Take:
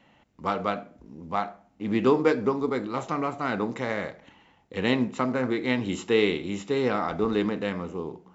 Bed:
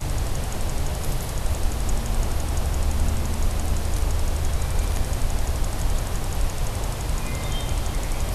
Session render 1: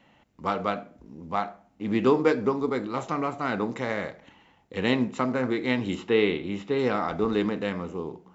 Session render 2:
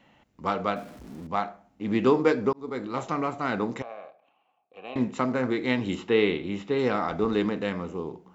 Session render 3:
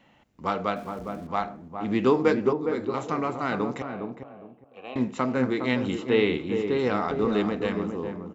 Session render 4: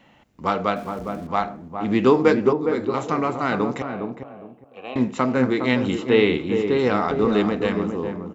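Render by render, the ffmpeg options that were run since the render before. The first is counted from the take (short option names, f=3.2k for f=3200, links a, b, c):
-filter_complex "[0:a]asettb=1/sr,asplit=3[a][b][c];[a]atrim=end=5.954[d];[b]atrim=start=5.95:end=6.79,asetpts=PTS-STARTPTS,afade=t=in:d=0.004:c=qsin,afade=t=out:st=0.836:d=0.004:c=qsin,lowpass=3.7k[e];[c]atrim=start=6.786[f];[d][e]acrossfade=d=0.004:c1=hsin:c2=qsin[g];[g][f]acrossfade=d=0.004:c1=qsin:c2=hsin"
-filter_complex "[0:a]asettb=1/sr,asplit=3[a][b][c];[a]atrim=end=0.764[d];[b]atrim=start=0.76:end=1.27,asetpts=PTS-STARTPTS,afade=t=in:d=0.004:c=qsin,afade=t=out:st=0.506:d=0.004:c=qsin,aeval=exprs='val(0)+0.5*0.00631*sgn(val(0))':c=same[e];[c]atrim=start=1.266[f];[d][e]acrossfade=d=0.004:c1=hsin:c2=qsin[g];[g][f]acrossfade=d=0.004:c1=qsin:c2=hsin,asettb=1/sr,asplit=3[h][i][j];[h]atrim=end=3.824[k];[i]atrim=start=3.82:end=4.96,asetpts=PTS-STARTPTS,afade=t=in:d=0.004:c=qsin,afade=t=out:st=1.136:d=0.004:c=qsin,asplit=3[l][m][n];[l]bandpass=f=730:t=q:w=8,volume=0dB[o];[m]bandpass=f=1.09k:t=q:w=8,volume=-6dB[p];[n]bandpass=f=2.44k:t=q:w=8,volume=-9dB[q];[o][p][q]amix=inputs=3:normalize=0[r];[j]atrim=start=4.956[s];[k][r]acrossfade=d=0.004:c1=hsin:c2=qsin[t];[t][s]acrossfade=d=0.004:c1=qsin:c2=hsin,asplit=2[u][v];[u]atrim=end=2.53,asetpts=PTS-STARTPTS,afade=t=out:st=2.526:d=0.004:c=hsin[w];[v]atrim=start=2.53,asetpts=PTS-STARTPTS,afade=t=in:d=0.55:c=qsin[x];[w][x]concat=n=2:v=0:a=1"
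-filter_complex "[0:a]asplit=2[a][b];[b]adelay=410,lowpass=f=840:p=1,volume=-5dB,asplit=2[c][d];[d]adelay=410,lowpass=f=840:p=1,volume=0.25,asplit=2[e][f];[f]adelay=410,lowpass=f=840:p=1,volume=0.25[g];[a][c][e][g]amix=inputs=4:normalize=0"
-af "volume=5dB"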